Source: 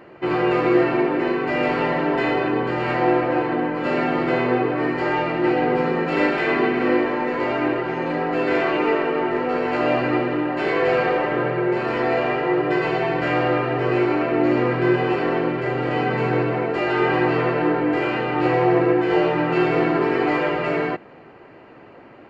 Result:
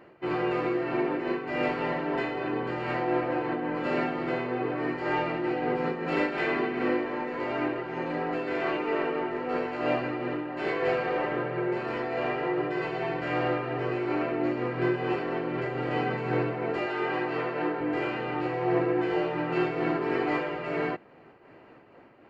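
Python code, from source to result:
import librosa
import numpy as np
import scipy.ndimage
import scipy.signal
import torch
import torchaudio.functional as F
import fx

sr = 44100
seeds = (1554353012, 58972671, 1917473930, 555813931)

y = fx.highpass(x, sr, hz=260.0, slope=6, at=(16.86, 17.81))
y = fx.am_noise(y, sr, seeds[0], hz=5.7, depth_pct=65)
y = F.gain(torch.from_numpy(y), -5.0).numpy()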